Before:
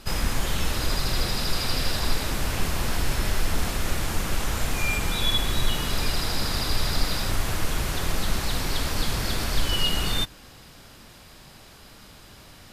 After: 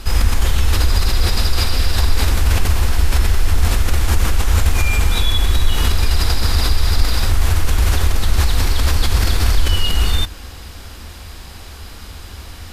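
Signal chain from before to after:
notch filter 600 Hz, Q 12
in parallel at −1.5 dB: compressor whose output falls as the input rises −28 dBFS, ratio −0.5
on the sum: low shelf with overshoot 100 Hz +7 dB, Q 3
level +1.5 dB

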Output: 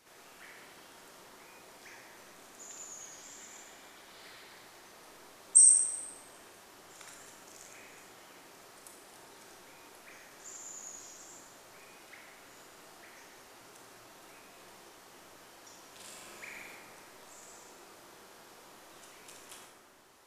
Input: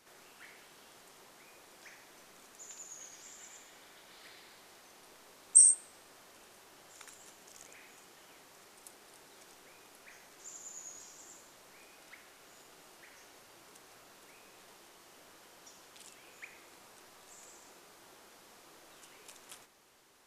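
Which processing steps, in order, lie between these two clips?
0:15.88–0:16.75: flutter between parallel walls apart 7.4 metres, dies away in 0.96 s
convolution reverb RT60 2.2 s, pre-delay 18 ms, DRR −1 dB

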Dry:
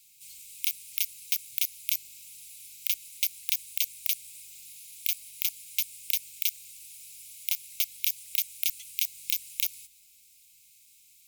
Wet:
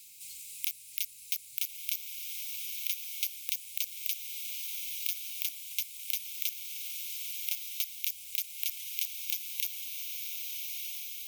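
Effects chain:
feedback delay with all-pass diffusion 1,261 ms, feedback 43%, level −5 dB
multiband upward and downward compressor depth 40%
level −5 dB

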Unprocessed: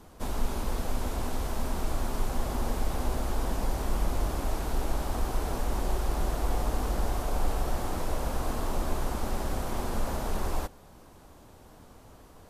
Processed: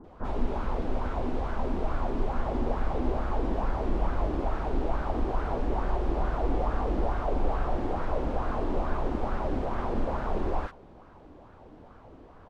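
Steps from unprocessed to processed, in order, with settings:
low-pass filter 2,400 Hz 12 dB per octave
multiband delay without the direct sound lows, highs 40 ms, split 1,400 Hz
auto-filter bell 2.3 Hz 280–1,500 Hz +10 dB

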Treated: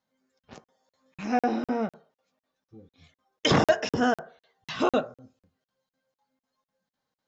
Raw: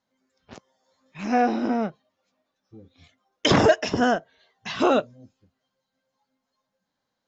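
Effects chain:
convolution reverb RT60 0.45 s, pre-delay 3 ms, DRR 9 dB
regular buffer underruns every 0.25 s, samples 2,048, zero, from 0:00.39
level −3.5 dB

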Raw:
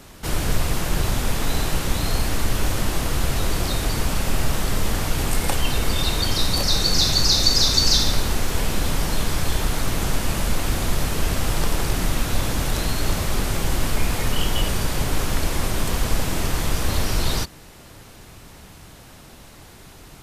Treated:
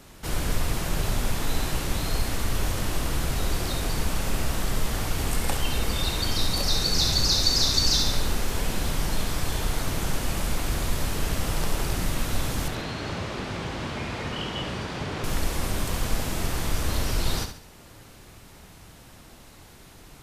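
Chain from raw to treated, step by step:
0:12.68–0:15.24: band-pass filter 100–4,000 Hz
flutter between parallel walls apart 11.8 metres, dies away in 0.49 s
level −5 dB

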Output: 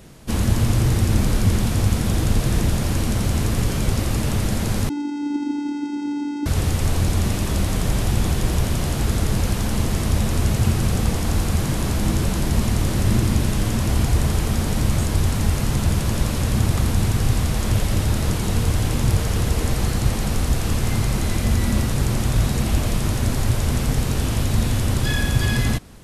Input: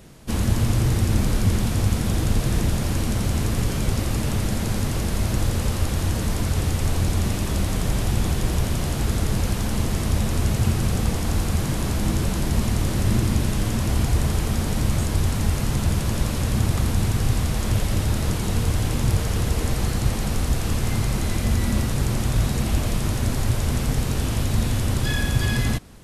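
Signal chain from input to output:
0:04.89–0:06.46: channel vocoder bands 4, square 290 Hz
level +2 dB

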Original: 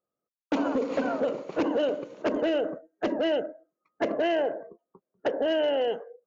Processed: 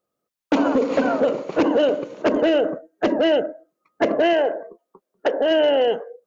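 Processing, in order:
0:04.33–0:05.51: parametric band 110 Hz −14 dB 1.7 octaves
level +8 dB

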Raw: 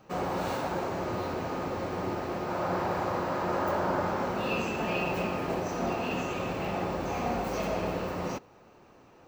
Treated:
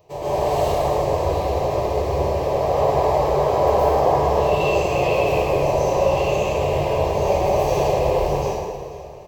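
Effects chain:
high-shelf EQ 3,000 Hz −6 dB
on a send: repeating echo 488 ms, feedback 39%, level −16.5 dB
on the sum: phase-vocoder pitch shift with formants kept −4 semitones
high-shelf EQ 7,500 Hz +6.5 dB
phaser with its sweep stopped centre 590 Hz, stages 4
dense smooth reverb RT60 1.7 s, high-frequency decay 0.7×, pre-delay 105 ms, DRR −10 dB
level +5 dB

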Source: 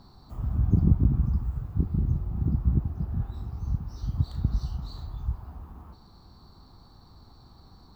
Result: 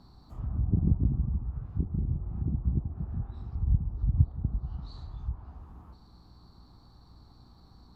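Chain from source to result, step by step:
0:03.55–0:04.29: low-shelf EQ 200 Hz +9.5 dB
mains hum 60 Hz, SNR 27 dB
treble cut that deepens with the level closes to 860 Hz, closed at −22 dBFS
level −4.5 dB

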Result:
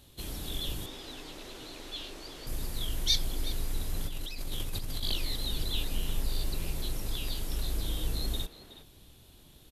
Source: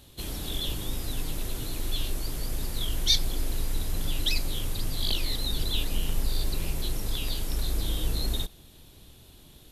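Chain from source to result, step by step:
0:00.86–0:02.47: three-way crossover with the lows and the highs turned down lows −16 dB, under 250 Hz, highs −16 dB, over 6,700 Hz
0:04.07–0:05.03: compressor whose output falls as the input rises −30 dBFS, ratio −1
far-end echo of a speakerphone 370 ms, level −10 dB
level −4 dB

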